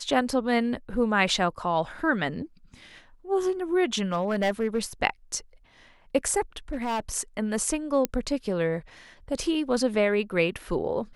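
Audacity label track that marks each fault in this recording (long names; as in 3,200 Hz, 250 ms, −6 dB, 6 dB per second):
4.120000	4.790000	clipping −19.5 dBFS
6.730000	7.000000	clipping −25 dBFS
8.050000	8.050000	click −9 dBFS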